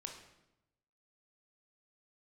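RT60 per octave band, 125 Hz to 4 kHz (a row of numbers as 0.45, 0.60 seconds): 1.2, 1.1, 0.95, 0.85, 0.75, 0.70 seconds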